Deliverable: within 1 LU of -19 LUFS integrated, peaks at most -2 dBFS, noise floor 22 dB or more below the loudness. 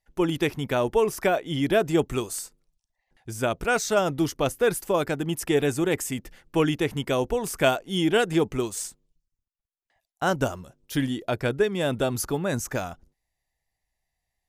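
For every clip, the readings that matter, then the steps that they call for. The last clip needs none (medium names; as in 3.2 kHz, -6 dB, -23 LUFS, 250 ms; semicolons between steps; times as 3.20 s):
loudness -25.5 LUFS; peak level -7.5 dBFS; loudness target -19.0 LUFS
-> trim +6.5 dB; peak limiter -2 dBFS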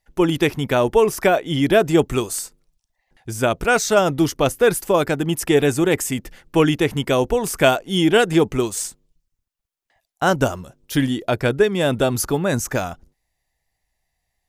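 loudness -19.0 LUFS; peak level -2.0 dBFS; noise floor -78 dBFS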